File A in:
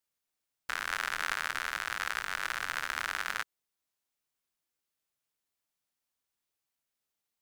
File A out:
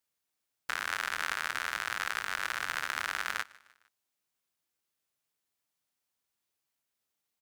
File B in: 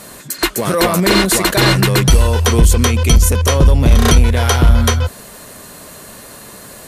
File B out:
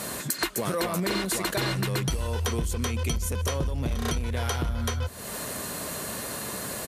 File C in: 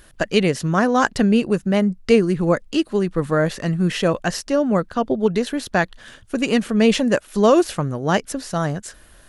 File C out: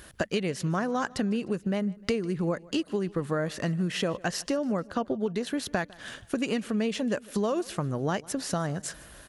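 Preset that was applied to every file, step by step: high-pass 52 Hz; compression 8:1, threshold -27 dBFS; on a send: feedback delay 152 ms, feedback 50%, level -23 dB; on the sum: trim +1.5 dB

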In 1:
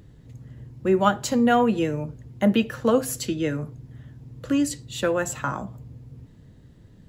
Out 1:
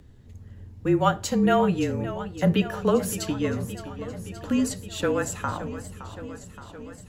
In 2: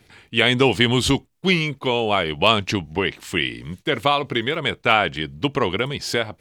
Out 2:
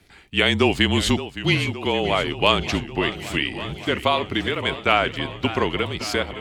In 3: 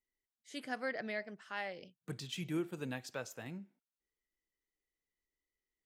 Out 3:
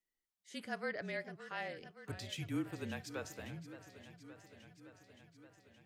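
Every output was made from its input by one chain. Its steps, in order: frequency shift -32 Hz; modulated delay 569 ms, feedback 72%, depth 120 cents, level -13.5 dB; trim -1.5 dB

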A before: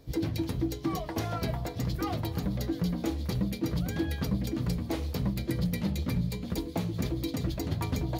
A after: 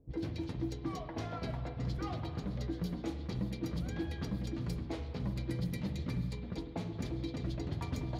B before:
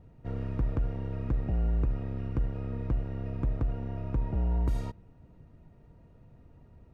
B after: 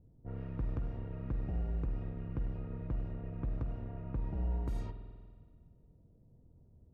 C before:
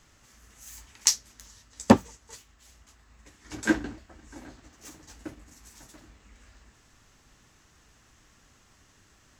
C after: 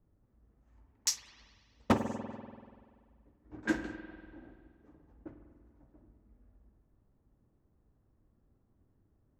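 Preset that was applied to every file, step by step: level-controlled noise filter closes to 420 Hz, open at -24.5 dBFS; spring tank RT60 1.9 s, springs 48 ms, chirp 60 ms, DRR 7.5 dB; wavefolder -8.5 dBFS; trim -7.5 dB

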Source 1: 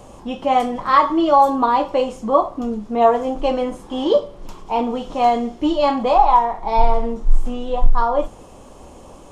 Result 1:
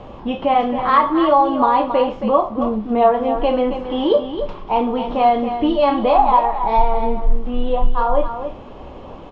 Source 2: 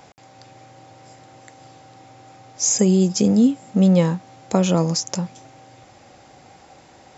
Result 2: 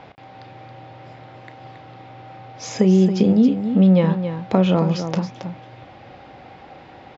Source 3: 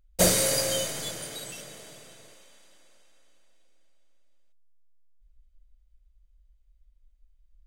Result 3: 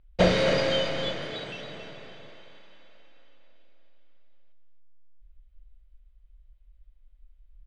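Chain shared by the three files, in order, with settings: low-pass 3.6 kHz 24 dB/octave; compression 1.5:1, threshold -25 dBFS; loudspeakers at several distances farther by 11 m -12 dB, 94 m -9 dB; trim +5 dB

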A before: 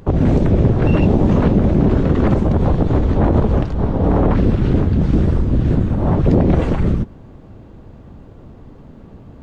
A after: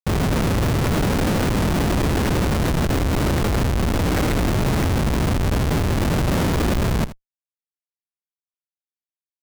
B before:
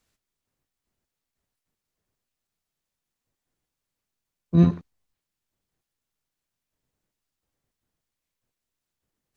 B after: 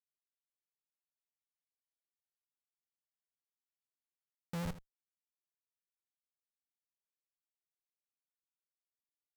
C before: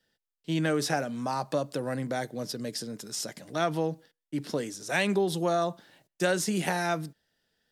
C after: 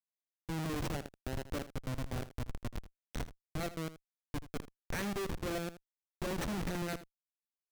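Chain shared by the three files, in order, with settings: comb filter that takes the minimum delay 0.51 ms; Schmitt trigger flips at -27.5 dBFS; delay 80 ms -14.5 dB; trim -3.5 dB

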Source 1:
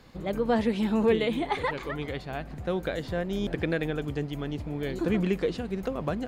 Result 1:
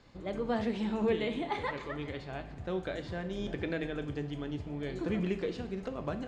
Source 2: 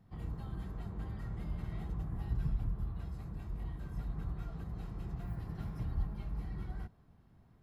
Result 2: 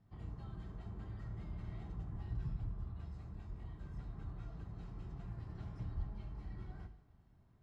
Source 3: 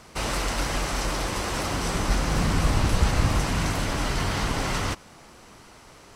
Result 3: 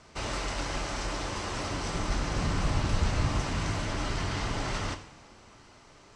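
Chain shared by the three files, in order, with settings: low-pass 7.9 kHz 24 dB/octave; two-slope reverb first 0.61 s, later 2.9 s, from -18 dB, DRR 7 dB; trim -6.5 dB

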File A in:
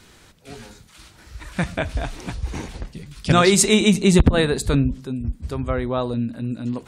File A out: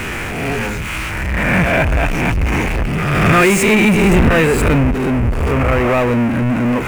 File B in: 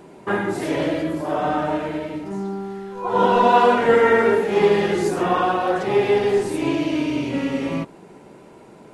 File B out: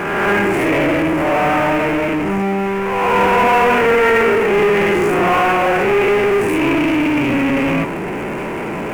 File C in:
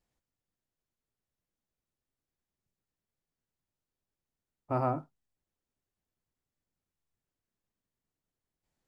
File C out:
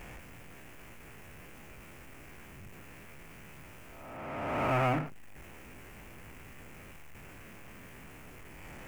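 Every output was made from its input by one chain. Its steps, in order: reverse spectral sustain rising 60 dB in 0.72 s; power-law waveshaper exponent 0.35; resonant high shelf 3.1 kHz -7.5 dB, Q 3; trim -5.5 dB

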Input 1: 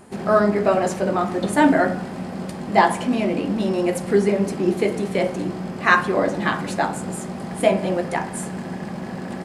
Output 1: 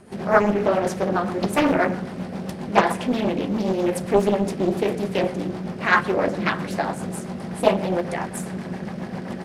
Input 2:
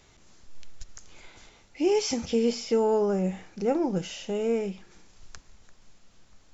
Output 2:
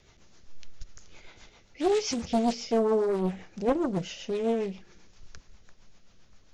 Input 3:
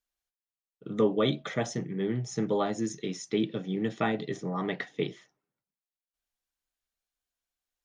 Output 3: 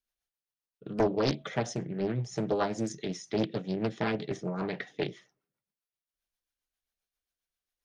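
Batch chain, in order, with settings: peaking EQ 280 Hz -3 dB 0.43 oct; band-stop 7.4 kHz, Q 5.9; rotary cabinet horn 7.5 Hz; loudspeaker Doppler distortion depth 0.73 ms; trim +1.5 dB

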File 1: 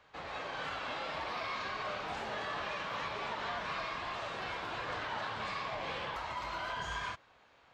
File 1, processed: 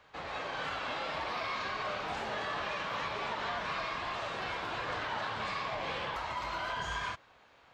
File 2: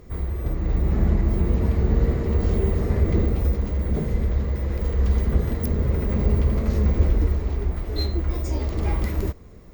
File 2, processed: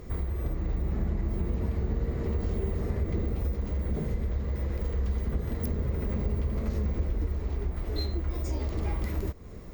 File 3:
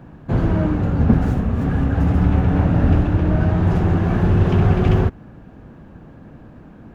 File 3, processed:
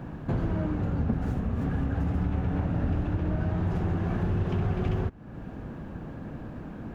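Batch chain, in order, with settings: compression 3:1, threshold -32 dBFS; trim +2.5 dB

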